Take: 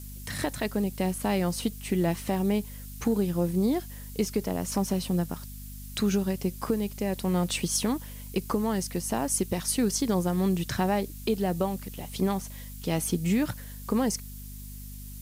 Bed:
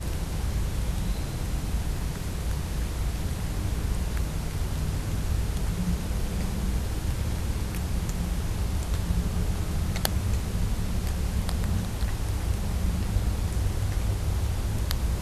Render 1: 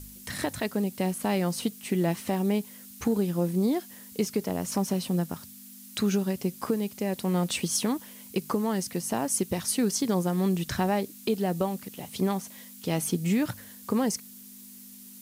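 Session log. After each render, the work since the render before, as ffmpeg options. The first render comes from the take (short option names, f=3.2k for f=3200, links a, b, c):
-af "bandreject=f=50:t=h:w=4,bandreject=f=100:t=h:w=4,bandreject=f=150:t=h:w=4"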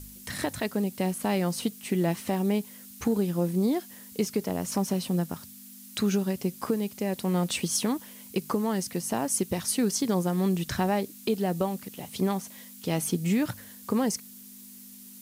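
-af anull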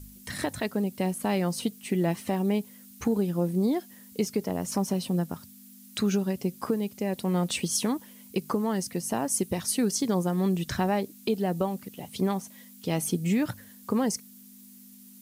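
-af "afftdn=nr=6:nf=-47"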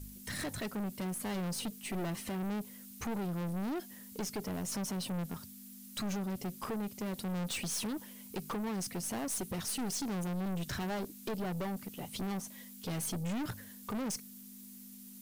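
-af "aeval=exprs='(tanh(50.1*val(0)+0.25)-tanh(0.25))/50.1':c=same"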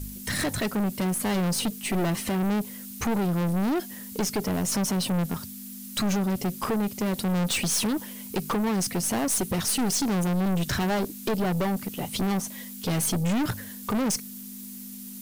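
-af "volume=11dB"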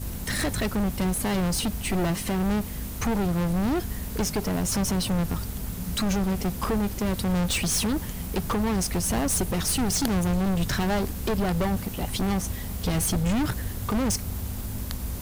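-filter_complex "[1:a]volume=-5.5dB[a];[0:a][a]amix=inputs=2:normalize=0"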